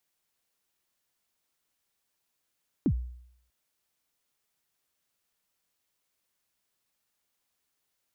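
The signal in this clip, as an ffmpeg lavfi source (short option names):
-f lavfi -i "aevalsrc='0.112*pow(10,-3*t/0.7)*sin(2*PI*(340*0.072/log(61/340)*(exp(log(61/340)*min(t,0.072)/0.072)-1)+61*max(t-0.072,0)))':d=0.64:s=44100"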